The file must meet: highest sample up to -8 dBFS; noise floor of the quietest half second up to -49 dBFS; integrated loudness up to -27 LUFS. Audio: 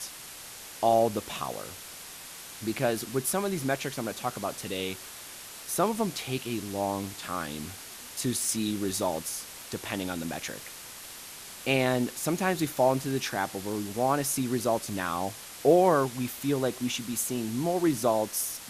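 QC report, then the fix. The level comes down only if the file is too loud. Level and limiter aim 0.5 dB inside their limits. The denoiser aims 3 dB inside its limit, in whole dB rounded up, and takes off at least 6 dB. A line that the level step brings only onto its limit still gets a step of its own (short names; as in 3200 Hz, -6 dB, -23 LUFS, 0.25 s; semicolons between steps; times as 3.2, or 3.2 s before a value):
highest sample -9.5 dBFS: OK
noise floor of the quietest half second -44 dBFS: fail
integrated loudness -29.0 LUFS: OK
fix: denoiser 8 dB, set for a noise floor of -44 dBFS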